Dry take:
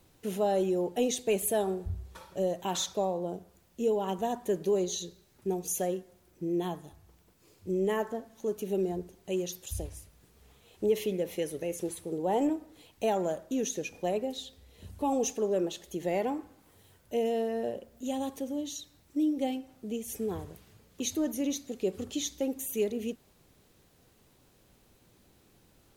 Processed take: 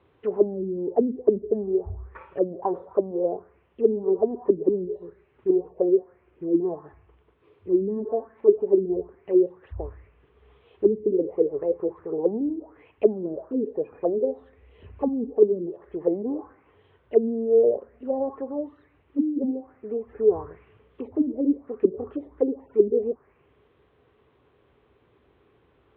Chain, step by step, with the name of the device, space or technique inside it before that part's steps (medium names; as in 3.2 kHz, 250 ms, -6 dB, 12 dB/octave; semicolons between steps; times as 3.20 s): envelope filter bass rig (touch-sensitive low-pass 220–3700 Hz down, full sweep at -25 dBFS; cabinet simulation 60–2200 Hz, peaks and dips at 60 Hz +7 dB, 190 Hz -8 dB, 420 Hz +10 dB, 1.1 kHz +7 dB)